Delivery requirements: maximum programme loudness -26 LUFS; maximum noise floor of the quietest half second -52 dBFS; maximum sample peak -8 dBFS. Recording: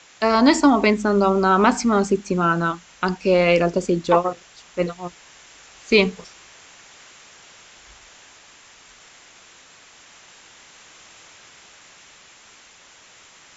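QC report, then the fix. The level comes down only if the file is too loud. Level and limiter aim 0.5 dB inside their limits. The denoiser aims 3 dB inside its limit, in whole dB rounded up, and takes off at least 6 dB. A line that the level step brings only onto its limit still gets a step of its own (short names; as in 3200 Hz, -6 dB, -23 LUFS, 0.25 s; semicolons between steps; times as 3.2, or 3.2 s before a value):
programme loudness -19.0 LUFS: fail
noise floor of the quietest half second -49 dBFS: fail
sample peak -3.5 dBFS: fail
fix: gain -7.5 dB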